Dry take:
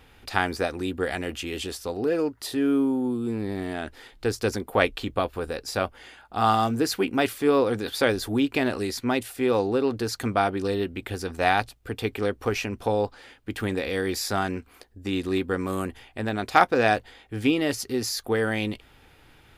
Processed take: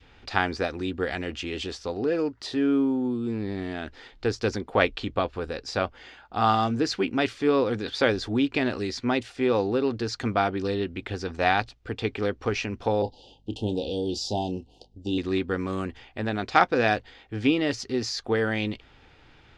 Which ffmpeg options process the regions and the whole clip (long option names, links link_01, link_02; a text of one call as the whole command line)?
ffmpeg -i in.wav -filter_complex "[0:a]asettb=1/sr,asplit=3[link_01][link_02][link_03];[link_01]atrim=end=13.024[link_04];[link_02]atrim=start=13.02:end=15.18,asetpts=PTS-STARTPTS,afade=type=in:duration=0.004:curve=qsin,afade=type=out:start_time=2.156:duration=0.004:curve=qsin,asuperstop=centerf=1600:order=20:qfactor=0.87,asplit=2[link_05][link_06];[link_06]adelay=28,volume=-12dB[link_07];[link_05][link_07]amix=inputs=2:normalize=0,atrim=end_sample=95256,aeval=exprs='val(0)+0.000891*(sin(2*PI*50*n/s)+sin(2*PI*2*50*n/s)/2+sin(2*PI*3*50*n/s)/3+sin(2*PI*4*50*n/s)/4+sin(2*PI*5*50*n/s)/5)':channel_layout=same[link_08];[link_03]atrim=start=15.176[link_09];[link_04][link_08]acrossfade=duration=0.004:curve1=hsin:curve2=qsin[link_10];[link_10][link_09]acrossfade=duration=0.004:curve1=qsin:curve2=hsin,lowpass=frequency=6100:width=0.5412,lowpass=frequency=6100:width=1.3066,adynamicequalizer=threshold=0.0158:dfrequency=760:dqfactor=0.76:tfrequency=760:tqfactor=0.76:attack=5:release=100:ratio=0.375:range=2:mode=cutabove:tftype=bell" out.wav